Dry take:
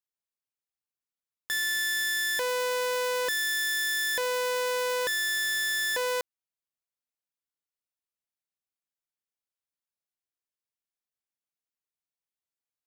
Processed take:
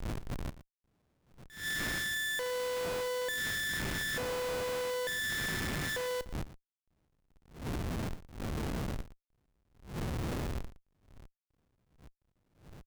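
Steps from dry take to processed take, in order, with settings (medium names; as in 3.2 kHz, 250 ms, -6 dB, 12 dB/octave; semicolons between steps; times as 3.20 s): local Wiener filter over 41 samples; wind noise 240 Hz -30 dBFS; Schmitt trigger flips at -37 dBFS; on a send: delay 116 ms -15.5 dB; on the sum: attacks held to a fixed rise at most 130 dB/s; trim -6 dB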